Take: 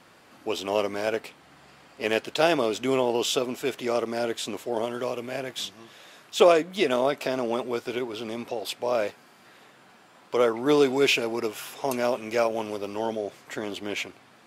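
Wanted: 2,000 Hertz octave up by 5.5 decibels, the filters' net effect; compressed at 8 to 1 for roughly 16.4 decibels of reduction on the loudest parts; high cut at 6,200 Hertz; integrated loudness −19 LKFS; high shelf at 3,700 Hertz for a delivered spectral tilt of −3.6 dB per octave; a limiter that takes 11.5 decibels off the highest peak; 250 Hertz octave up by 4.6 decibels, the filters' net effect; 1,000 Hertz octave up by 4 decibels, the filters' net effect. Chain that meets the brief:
low-pass filter 6,200 Hz
parametric band 250 Hz +5.5 dB
parametric band 1,000 Hz +3.5 dB
parametric band 2,000 Hz +5.5 dB
high-shelf EQ 3,700 Hz +3 dB
downward compressor 8 to 1, threshold −27 dBFS
level +17.5 dB
brickwall limiter −8.5 dBFS

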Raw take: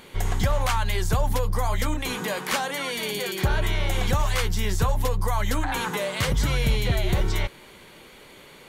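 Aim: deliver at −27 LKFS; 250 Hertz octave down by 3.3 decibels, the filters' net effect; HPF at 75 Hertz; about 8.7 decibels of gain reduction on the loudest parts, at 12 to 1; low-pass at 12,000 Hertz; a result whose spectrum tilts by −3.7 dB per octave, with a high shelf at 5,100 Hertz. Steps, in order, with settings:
high-pass filter 75 Hz
low-pass filter 12,000 Hz
parametric band 250 Hz −5 dB
high-shelf EQ 5,100 Hz +7.5 dB
downward compressor 12 to 1, threshold −28 dBFS
level +4.5 dB

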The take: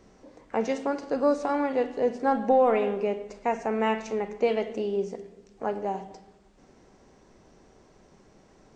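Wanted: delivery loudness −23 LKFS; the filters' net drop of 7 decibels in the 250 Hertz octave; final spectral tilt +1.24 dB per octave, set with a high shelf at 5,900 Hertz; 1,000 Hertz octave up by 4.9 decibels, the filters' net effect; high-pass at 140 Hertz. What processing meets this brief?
high-pass filter 140 Hz
parametric band 250 Hz −8 dB
parametric band 1,000 Hz +7.5 dB
high-shelf EQ 5,900 Hz −7.5 dB
level +3 dB

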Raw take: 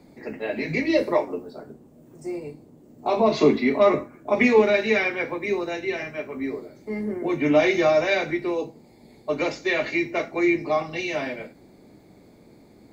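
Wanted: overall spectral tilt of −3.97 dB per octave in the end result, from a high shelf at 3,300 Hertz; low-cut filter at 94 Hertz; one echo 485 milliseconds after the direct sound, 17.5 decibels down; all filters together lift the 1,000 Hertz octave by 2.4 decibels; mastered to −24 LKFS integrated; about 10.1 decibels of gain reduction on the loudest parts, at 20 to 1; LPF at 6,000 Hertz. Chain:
high-pass filter 94 Hz
low-pass filter 6,000 Hz
parametric band 1,000 Hz +3.5 dB
high-shelf EQ 3,300 Hz −3.5 dB
downward compressor 20 to 1, threshold −21 dBFS
single-tap delay 485 ms −17.5 dB
level +4 dB

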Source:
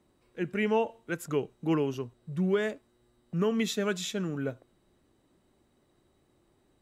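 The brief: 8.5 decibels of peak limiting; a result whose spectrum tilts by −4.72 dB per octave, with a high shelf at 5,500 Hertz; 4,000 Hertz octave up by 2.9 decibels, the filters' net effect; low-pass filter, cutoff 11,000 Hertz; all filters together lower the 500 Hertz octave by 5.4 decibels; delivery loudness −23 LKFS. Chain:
low-pass filter 11,000 Hz
parametric band 500 Hz −7 dB
parametric band 4,000 Hz +5.5 dB
high-shelf EQ 5,500 Hz −5.5 dB
level +14 dB
brickwall limiter −13 dBFS

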